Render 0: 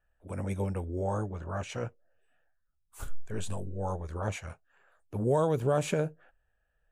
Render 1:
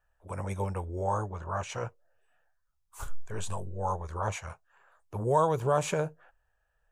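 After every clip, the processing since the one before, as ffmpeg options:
ffmpeg -i in.wav -af "equalizer=frequency=250:width_type=o:width=0.67:gain=-9,equalizer=frequency=1000:width_type=o:width=0.67:gain=9,equalizer=frequency=6300:width_type=o:width=0.67:gain=4" out.wav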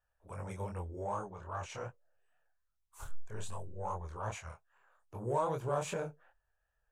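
ffmpeg -i in.wav -filter_complex "[0:a]flanger=delay=22.5:depth=6.6:speed=2.5,asplit=2[link_01][link_02];[link_02]asoftclip=type=tanh:threshold=-30.5dB,volume=-11dB[link_03];[link_01][link_03]amix=inputs=2:normalize=0,volume=-6dB" out.wav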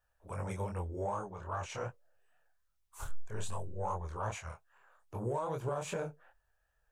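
ffmpeg -i in.wav -af "alimiter=level_in=6.5dB:limit=-24dB:level=0:latency=1:release=409,volume=-6.5dB,volume=4dB" out.wav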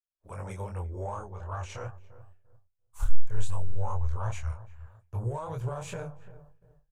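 ffmpeg -i in.wav -filter_complex "[0:a]asplit=2[link_01][link_02];[link_02]adelay=344,lowpass=frequency=990:poles=1,volume=-15dB,asplit=2[link_03][link_04];[link_04]adelay=344,lowpass=frequency=990:poles=1,volume=0.43,asplit=2[link_05][link_06];[link_06]adelay=344,lowpass=frequency=990:poles=1,volume=0.43,asplit=2[link_07][link_08];[link_08]adelay=344,lowpass=frequency=990:poles=1,volume=0.43[link_09];[link_01][link_03][link_05][link_07][link_09]amix=inputs=5:normalize=0,agate=range=-33dB:threshold=-56dB:ratio=3:detection=peak,asubboost=boost=11:cutoff=78" out.wav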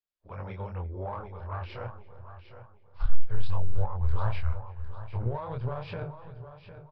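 ffmpeg -i in.wav -af "aresample=11025,aresample=44100,aecho=1:1:755|1510|2265:0.266|0.0772|0.0224,aeval=exprs='0.398*(cos(1*acos(clip(val(0)/0.398,-1,1)))-cos(1*PI/2))+0.0224*(cos(8*acos(clip(val(0)/0.398,-1,1)))-cos(8*PI/2))':channel_layout=same" out.wav

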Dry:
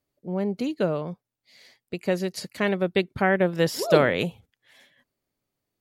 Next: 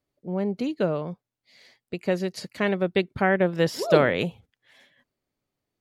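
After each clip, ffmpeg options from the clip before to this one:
ffmpeg -i in.wav -af "highshelf=frequency=8200:gain=-9.5" out.wav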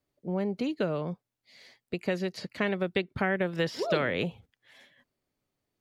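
ffmpeg -i in.wav -filter_complex "[0:a]acrossover=split=510|1400|4800[link_01][link_02][link_03][link_04];[link_01]acompressor=threshold=-29dB:ratio=4[link_05];[link_02]acompressor=threshold=-35dB:ratio=4[link_06];[link_03]acompressor=threshold=-30dB:ratio=4[link_07];[link_04]acompressor=threshold=-57dB:ratio=4[link_08];[link_05][link_06][link_07][link_08]amix=inputs=4:normalize=0" out.wav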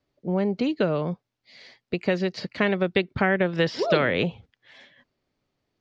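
ffmpeg -i in.wav -af "lowpass=frequency=5800:width=0.5412,lowpass=frequency=5800:width=1.3066,volume=6dB" out.wav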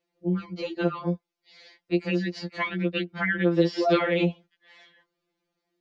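ffmpeg -i in.wav -af "lowshelf=frequency=160:width_type=q:width=3:gain=-13.5,afftfilt=real='re*2.83*eq(mod(b,8),0)':imag='im*2.83*eq(mod(b,8),0)':win_size=2048:overlap=0.75" out.wav

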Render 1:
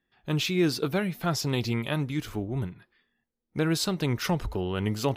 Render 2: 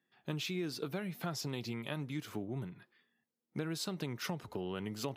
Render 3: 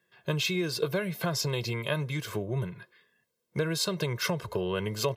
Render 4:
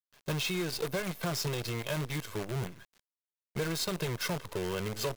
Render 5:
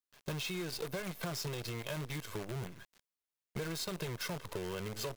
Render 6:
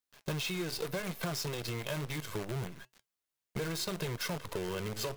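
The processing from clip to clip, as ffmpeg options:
ffmpeg -i in.wav -af "acompressor=threshold=-32dB:ratio=6,highpass=frequency=120:width=0.5412,highpass=frequency=120:width=1.3066,volume=-3dB" out.wav
ffmpeg -i in.wav -af "aecho=1:1:1.9:0.83,volume=8dB" out.wav
ffmpeg -i in.wav -af "acrusher=bits=6:dc=4:mix=0:aa=0.000001,asoftclip=type=tanh:threshold=-23.5dB,volume=-2dB" out.wav
ffmpeg -i in.wav -af "acompressor=threshold=-36dB:ratio=6" out.wav
ffmpeg -i in.wav -af "flanger=delay=3.8:depth=6.8:regen=-82:speed=0.68:shape=sinusoidal,volume=7.5dB" out.wav

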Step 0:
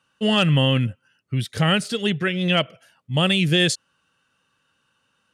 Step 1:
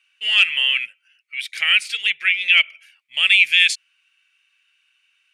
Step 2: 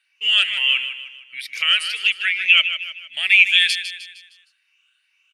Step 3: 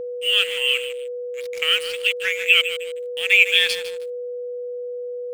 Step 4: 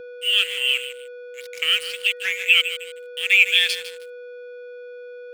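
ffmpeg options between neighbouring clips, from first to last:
ffmpeg -i in.wav -af "highpass=frequency=2300:width_type=q:width=8.9,volume=-1dB" out.wav
ffmpeg -i in.wav -filter_complex "[0:a]afftfilt=real='re*pow(10,11/40*sin(2*PI*(0.8*log(max(b,1)*sr/1024/100)/log(2)-(2.2)*(pts-256)/sr)))':imag='im*pow(10,11/40*sin(2*PI*(0.8*log(max(b,1)*sr/1024/100)/log(2)-(2.2)*(pts-256)/sr)))':win_size=1024:overlap=0.75,asplit=2[link_01][link_02];[link_02]aecho=0:1:154|308|462|616|770:0.299|0.131|0.0578|0.0254|0.0112[link_03];[link_01][link_03]amix=inputs=2:normalize=0,volume=-2.5dB" out.wav
ffmpeg -i in.wav -af "aeval=exprs='sgn(val(0))*max(abs(val(0))-0.0299,0)':channel_layout=same,aeval=exprs='val(0)+0.0501*sin(2*PI*490*n/s)':channel_layout=same,volume=-1dB" out.wav
ffmpeg -i in.wav -filter_complex "[0:a]acrossover=split=1300[link_01][link_02];[link_01]asoftclip=type=tanh:threshold=-37.5dB[link_03];[link_03][link_02]amix=inputs=2:normalize=0,bandreject=frequency=314.9:width_type=h:width=4,bandreject=frequency=629.8:width_type=h:width=4,bandreject=frequency=944.7:width_type=h:width=4,bandreject=frequency=1259.6:width_type=h:width=4,bandreject=frequency=1574.5:width_type=h:width=4,bandreject=frequency=1889.4:width_type=h:width=4" out.wav

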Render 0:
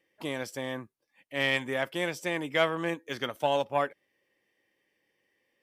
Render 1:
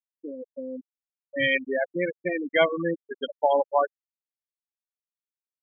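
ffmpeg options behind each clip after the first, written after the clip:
ffmpeg -i in.wav -af "bandreject=frequency=1300:width=12,afftfilt=real='re*gte(hypot(re,im),0.112)':imag='im*gte(hypot(re,im),0.112)':win_size=1024:overlap=0.75,dynaudnorm=framelen=180:gausssize=7:maxgain=6dB" out.wav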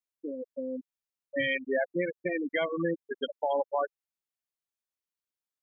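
ffmpeg -i in.wav -af "alimiter=limit=-19dB:level=0:latency=1:release=222" out.wav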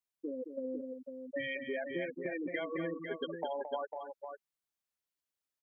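ffmpeg -i in.wav -af "acompressor=threshold=-34dB:ratio=6,aecho=1:1:220|500:0.398|0.447,volume=-1dB" out.wav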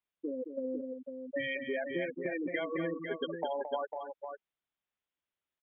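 ffmpeg -i in.wav -af "aresample=8000,aresample=44100,volume=2.5dB" out.wav

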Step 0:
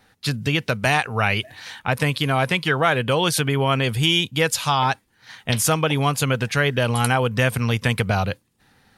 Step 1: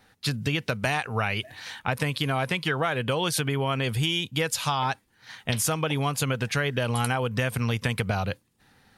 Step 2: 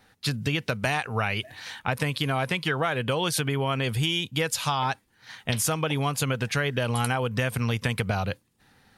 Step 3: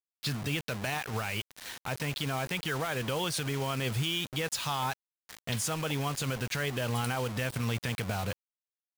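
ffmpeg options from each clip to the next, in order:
ffmpeg -i in.wav -af "acompressor=threshold=-20dB:ratio=6,volume=-2dB" out.wav
ffmpeg -i in.wav -af anull out.wav
ffmpeg -i in.wav -filter_complex "[0:a]lowpass=8800,acrossover=split=3500[link_01][link_02];[link_01]alimiter=limit=-20dB:level=0:latency=1:release=27[link_03];[link_03][link_02]amix=inputs=2:normalize=0,acrusher=bits=5:mix=0:aa=0.000001,volume=-4dB" out.wav

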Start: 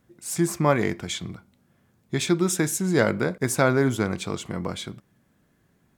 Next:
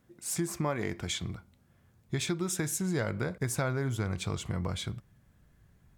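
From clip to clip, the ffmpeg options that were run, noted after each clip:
ffmpeg -i in.wav -af "asubboost=boost=7:cutoff=98,acompressor=threshold=-26dB:ratio=4,volume=-2.5dB" out.wav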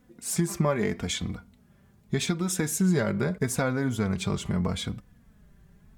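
ffmpeg -i in.wav -af "lowshelf=frequency=450:gain=4.5,flanger=delay=4:depth=1.1:regen=17:speed=0.8:shape=sinusoidal,volume=7dB" out.wav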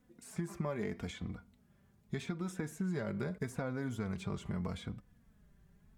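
ffmpeg -i in.wav -filter_complex "[0:a]acrossover=split=920|2300[link_01][link_02][link_03];[link_01]acompressor=threshold=-25dB:ratio=4[link_04];[link_02]acompressor=threshold=-39dB:ratio=4[link_05];[link_03]acompressor=threshold=-47dB:ratio=4[link_06];[link_04][link_05][link_06]amix=inputs=3:normalize=0,volume=-8.5dB" out.wav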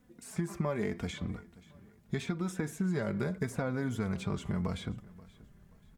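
ffmpeg -i in.wav -af "aecho=1:1:531|1062:0.0891|0.0294,volume=4.5dB" out.wav

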